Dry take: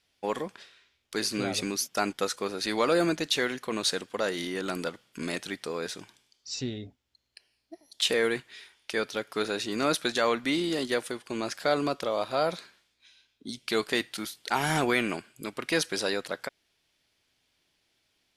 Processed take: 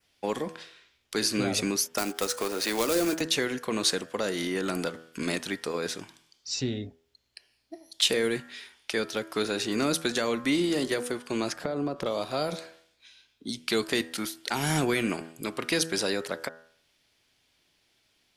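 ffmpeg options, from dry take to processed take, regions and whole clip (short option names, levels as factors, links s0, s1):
-filter_complex "[0:a]asettb=1/sr,asplit=3[s0][s1][s2];[s0]atrim=end=1.984[s3];[s1]atrim=start=1.98:end=3.21,asetpts=PTS-STARTPTS,afade=t=in:d=0.004:c=qsin,afade=t=out:st=1.226:d=0.004:c=qsin,highpass=280,acompressor=mode=upward:threshold=0.0398:ratio=2.5:attack=3.2:release=140:knee=2.83:detection=peak,acrusher=bits=2:mode=log:mix=0:aa=0.000001[s4];[s2]atrim=start=3.206[s5];[s3][s4]acrossfade=d=0.004:c1=hsin:c2=qsin[s6];[s6][s5]acrossfade=d=0.004:c1=qsin:c2=hsin,asettb=1/sr,asplit=3[s7][s8][s9];[s7]atrim=end=11.524[s10];[s8]atrim=start=11.52:end=12.06,asetpts=PTS-STARTPTS,afade=t=in:d=0.004:c=qsin,afade=t=out:st=0.536:d=0.004:c=qsin,tiltshelf=f=1300:g=8,acompressor=threshold=0.0282:ratio=4:attack=3.2:release=140:knee=1:detection=peak[s11];[s9]atrim=start=12.056[s12];[s10][s11]acrossfade=d=0.004:c1=hsin:c2=qsin[s13];[s13][s12]acrossfade=d=0.004:c1=qsin:c2=hsin,bandreject=f=81.52:t=h:w=4,bandreject=f=163.04:t=h:w=4,bandreject=f=244.56:t=h:w=4,bandreject=f=326.08:t=h:w=4,bandreject=f=407.6:t=h:w=4,bandreject=f=489.12:t=h:w=4,bandreject=f=570.64:t=h:w=4,bandreject=f=652.16:t=h:w=4,bandreject=f=733.68:t=h:w=4,bandreject=f=815.2:t=h:w=4,bandreject=f=896.72:t=h:w=4,bandreject=f=978.24:t=h:w=4,bandreject=f=1059.76:t=h:w=4,bandreject=f=1141.28:t=h:w=4,bandreject=f=1222.8:t=h:w=4,bandreject=f=1304.32:t=h:w=4,bandreject=f=1385.84:t=h:w=4,bandreject=f=1467.36:t=h:w=4,bandreject=f=1548.88:t=h:w=4,bandreject=f=1630.4:t=h:w=4,bandreject=f=1711.92:t=h:w=4,bandreject=f=1793.44:t=h:w=4,bandreject=f=1874.96:t=h:w=4,adynamicequalizer=threshold=0.00447:dfrequency=3800:dqfactor=1.8:tfrequency=3800:tqfactor=1.8:attack=5:release=100:ratio=0.375:range=2.5:mode=cutabove:tftype=bell,acrossover=split=380|3000[s14][s15][s16];[s15]acompressor=threshold=0.02:ratio=6[s17];[s14][s17][s16]amix=inputs=3:normalize=0,volume=1.58"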